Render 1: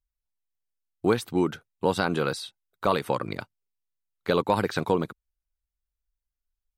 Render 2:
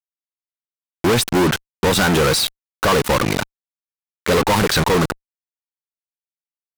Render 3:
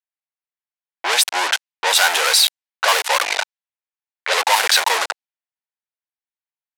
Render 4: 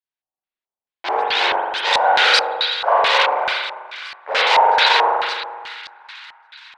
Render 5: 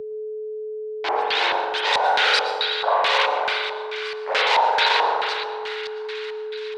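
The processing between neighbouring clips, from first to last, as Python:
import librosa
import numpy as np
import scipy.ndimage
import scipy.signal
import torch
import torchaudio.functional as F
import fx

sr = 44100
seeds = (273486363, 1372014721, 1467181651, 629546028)

y1 = fx.fuzz(x, sr, gain_db=47.0, gate_db=-39.0)
y2 = scipy.signal.sosfilt(scipy.signal.butter(4, 740.0, 'highpass', fs=sr, output='sos'), y1)
y2 = fx.env_lowpass(y2, sr, base_hz=2100.0, full_db=-16.0)
y2 = fx.peak_eq(y2, sr, hz=1200.0, db=-7.0, octaves=0.5)
y2 = y2 * 10.0 ** (5.5 / 20.0)
y3 = fx.echo_split(y2, sr, split_hz=1300.0, low_ms=147, high_ms=570, feedback_pct=52, wet_db=-15.0)
y3 = fx.rev_spring(y3, sr, rt60_s=1.3, pass_ms=(42,), chirp_ms=70, drr_db=-7.5)
y3 = fx.filter_lfo_lowpass(y3, sr, shape='square', hz=2.3, low_hz=810.0, high_hz=4200.0, q=2.1)
y3 = y3 * 10.0 ** (-6.0 / 20.0)
y4 = y3 + 10.0 ** (-32.0 / 20.0) * np.sin(2.0 * np.pi * 430.0 * np.arange(len(y3)) / sr)
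y4 = fx.rev_plate(y4, sr, seeds[0], rt60_s=0.57, hf_ratio=1.0, predelay_ms=95, drr_db=14.5)
y4 = fx.band_squash(y4, sr, depth_pct=40)
y4 = y4 * 10.0 ** (-4.0 / 20.0)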